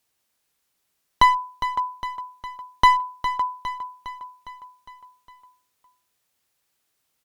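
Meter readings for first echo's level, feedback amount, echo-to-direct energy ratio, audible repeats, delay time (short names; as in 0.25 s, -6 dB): -11.0 dB, 57%, -9.5 dB, 5, 0.408 s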